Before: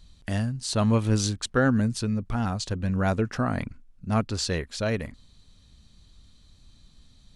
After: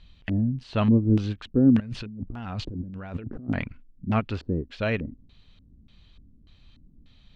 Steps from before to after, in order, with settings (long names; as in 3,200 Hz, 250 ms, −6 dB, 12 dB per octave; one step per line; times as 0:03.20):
de-essing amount 100%
auto-filter low-pass square 1.7 Hz 300–2,800 Hz
0:01.80–0:03.49: compressor whose output falls as the input rises −35 dBFS, ratio −1
every ending faded ahead of time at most 460 dB per second